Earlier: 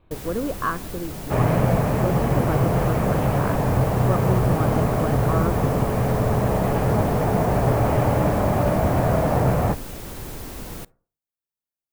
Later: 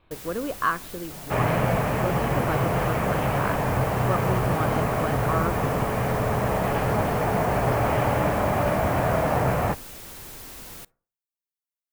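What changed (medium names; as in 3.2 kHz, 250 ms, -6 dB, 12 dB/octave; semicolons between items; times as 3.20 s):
first sound -6.5 dB; master: add tilt shelf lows -5.5 dB, about 860 Hz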